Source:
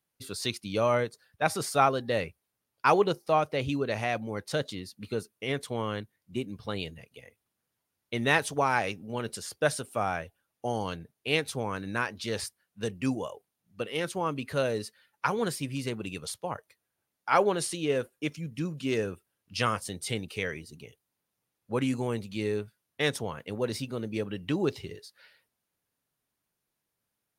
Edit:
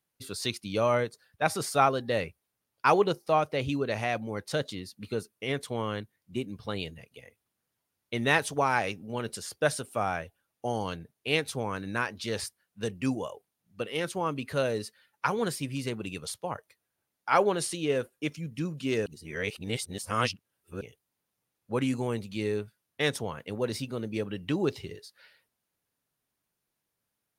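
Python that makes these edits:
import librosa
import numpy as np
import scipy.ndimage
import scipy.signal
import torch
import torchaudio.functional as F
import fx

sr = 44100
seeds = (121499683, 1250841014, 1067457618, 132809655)

y = fx.edit(x, sr, fx.reverse_span(start_s=19.06, length_s=1.75), tone=tone)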